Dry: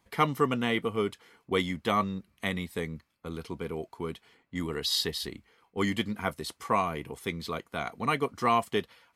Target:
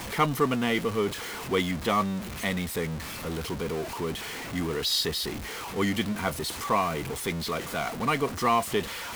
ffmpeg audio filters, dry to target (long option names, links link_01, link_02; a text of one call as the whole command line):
ffmpeg -i in.wav -af "aeval=exprs='val(0)+0.5*0.0282*sgn(val(0))':channel_layout=same" out.wav